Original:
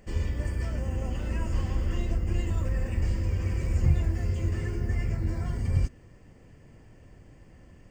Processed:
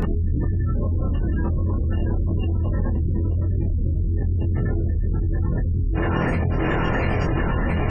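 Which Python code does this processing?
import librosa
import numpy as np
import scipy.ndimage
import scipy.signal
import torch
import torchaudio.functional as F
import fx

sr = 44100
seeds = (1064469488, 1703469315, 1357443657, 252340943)

y = fx.lower_of_two(x, sr, delay_ms=0.7)
y = fx.high_shelf(y, sr, hz=2000.0, db=-5.0)
y = fx.hum_notches(y, sr, base_hz=50, count=3)
y = fx.echo_thinned(y, sr, ms=684, feedback_pct=61, hz=340.0, wet_db=-5.0)
y = np.clip(y, -10.0 ** (-23.5 / 20.0), 10.0 ** (-23.5 / 20.0))
y = fx.highpass(y, sr, hz=43.0, slope=12, at=(1.33, 3.43), fade=0.02)
y = fx.spec_gate(y, sr, threshold_db=-25, keep='strong')
y = fx.doubler(y, sr, ms=24.0, db=-3.0)
y = fx.env_flatten(y, sr, amount_pct=100)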